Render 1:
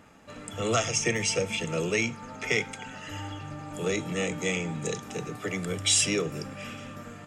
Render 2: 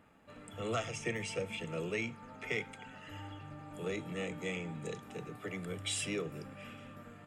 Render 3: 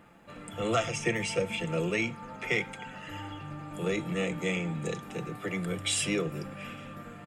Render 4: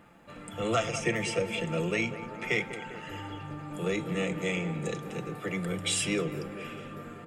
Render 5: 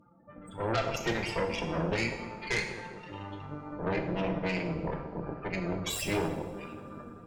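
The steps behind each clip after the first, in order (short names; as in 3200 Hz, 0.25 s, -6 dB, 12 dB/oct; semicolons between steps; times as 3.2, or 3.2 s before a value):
bell 6000 Hz -11.5 dB 0.78 oct; gain -9 dB
comb 5.8 ms, depth 37%; gain +7 dB
tape echo 0.197 s, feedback 77%, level -10 dB, low-pass 1400 Hz
loudest bins only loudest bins 16; added harmonics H 8 -12 dB, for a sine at -15.5 dBFS; two-slope reverb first 0.85 s, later 3.1 s, from -21 dB, DRR 3.5 dB; gain -3.5 dB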